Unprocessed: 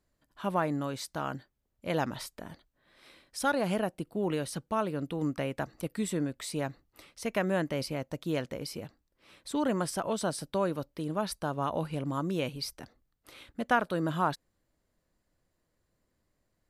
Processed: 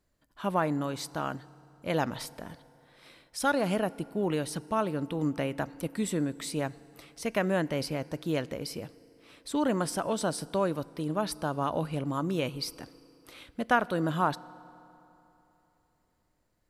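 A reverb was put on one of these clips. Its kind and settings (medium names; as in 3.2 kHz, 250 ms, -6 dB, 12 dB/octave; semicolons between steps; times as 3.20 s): FDN reverb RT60 3.2 s, high-frequency decay 0.65×, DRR 19.5 dB; trim +1.5 dB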